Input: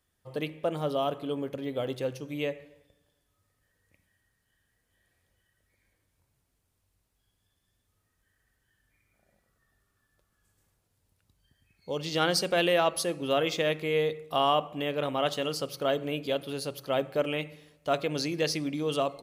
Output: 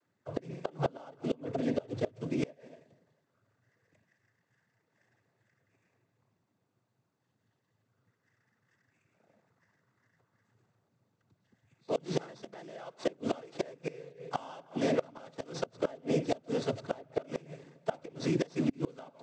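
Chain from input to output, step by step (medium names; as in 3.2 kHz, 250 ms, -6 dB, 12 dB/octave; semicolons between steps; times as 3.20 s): median filter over 15 samples; noise-vocoded speech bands 16; inverted gate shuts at -22 dBFS, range -25 dB; trim +4.5 dB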